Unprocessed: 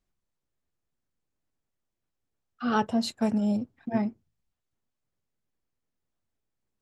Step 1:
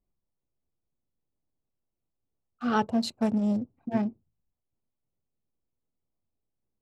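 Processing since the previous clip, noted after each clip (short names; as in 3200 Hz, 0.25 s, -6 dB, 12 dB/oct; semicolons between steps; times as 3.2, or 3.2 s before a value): Wiener smoothing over 25 samples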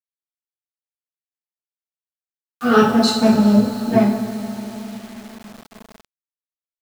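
bin magnitudes rounded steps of 15 dB; two-slope reverb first 0.51 s, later 4.4 s, from -16 dB, DRR -6 dB; bit-crush 8-bit; gain +8 dB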